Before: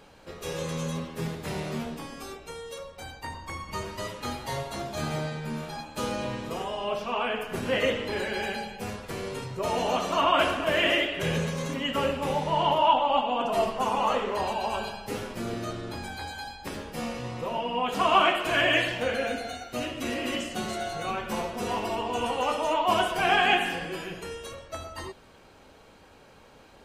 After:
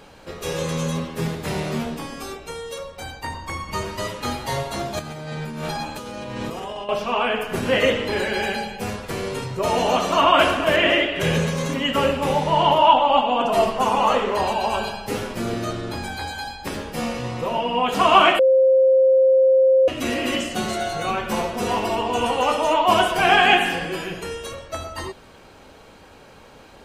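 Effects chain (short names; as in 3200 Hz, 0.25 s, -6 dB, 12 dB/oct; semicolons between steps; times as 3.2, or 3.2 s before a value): 4.99–6.89 negative-ratio compressor -38 dBFS, ratio -1; 10.76–11.16 LPF 3300 Hz 6 dB/oct; 18.39–19.88 bleep 527 Hz -18.5 dBFS; gain +7 dB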